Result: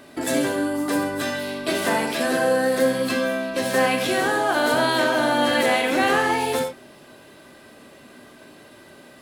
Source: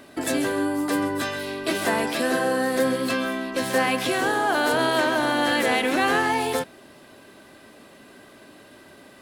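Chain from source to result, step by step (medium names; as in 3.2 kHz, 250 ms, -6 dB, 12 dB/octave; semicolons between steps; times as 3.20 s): gated-style reverb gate 110 ms flat, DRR 4 dB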